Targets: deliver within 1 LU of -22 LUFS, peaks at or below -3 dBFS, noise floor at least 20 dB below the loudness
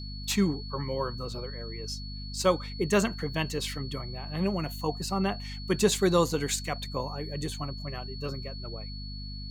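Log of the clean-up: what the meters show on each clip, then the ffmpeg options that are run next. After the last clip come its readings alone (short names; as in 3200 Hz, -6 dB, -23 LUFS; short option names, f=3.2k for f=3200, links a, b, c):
hum 50 Hz; harmonics up to 250 Hz; hum level -37 dBFS; steady tone 4400 Hz; tone level -43 dBFS; loudness -30.5 LUFS; peak -10.0 dBFS; loudness target -22.0 LUFS
-> -af "bandreject=f=50:t=h:w=4,bandreject=f=100:t=h:w=4,bandreject=f=150:t=h:w=4,bandreject=f=200:t=h:w=4,bandreject=f=250:t=h:w=4"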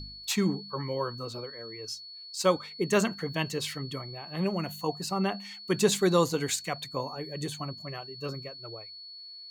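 hum none; steady tone 4400 Hz; tone level -43 dBFS
-> -af "bandreject=f=4.4k:w=30"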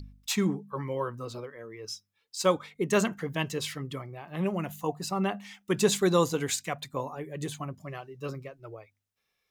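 steady tone none; loudness -30.5 LUFS; peak -10.5 dBFS; loudness target -22.0 LUFS
-> -af "volume=8.5dB,alimiter=limit=-3dB:level=0:latency=1"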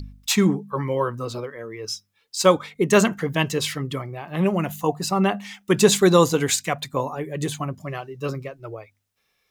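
loudness -22.5 LUFS; peak -3.0 dBFS; noise floor -71 dBFS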